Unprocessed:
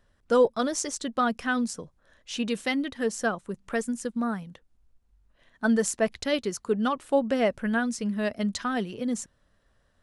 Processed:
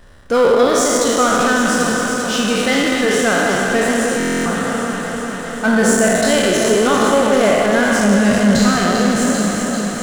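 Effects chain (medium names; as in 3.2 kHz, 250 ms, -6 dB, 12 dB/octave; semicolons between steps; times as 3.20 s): spectral sustain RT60 2.23 s; 7.99–8.68 s: tone controls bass +11 dB, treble +1 dB; power-law waveshaper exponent 0.7; echo whose repeats swap between lows and highs 197 ms, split 1.4 kHz, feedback 87%, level -6 dB; buffer glitch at 4.18 s, samples 1024, times 11; trim +2 dB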